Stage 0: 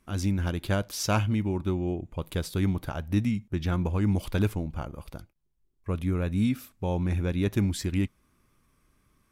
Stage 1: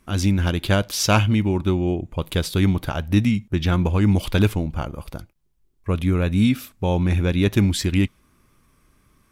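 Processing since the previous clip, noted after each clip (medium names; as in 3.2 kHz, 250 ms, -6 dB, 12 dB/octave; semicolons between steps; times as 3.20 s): dynamic bell 3.2 kHz, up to +5 dB, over -53 dBFS, Q 1.2; trim +7.5 dB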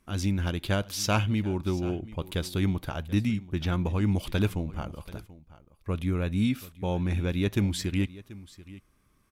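delay 734 ms -18.5 dB; trim -8 dB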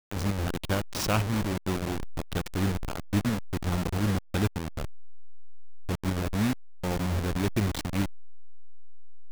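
send-on-delta sampling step -24.5 dBFS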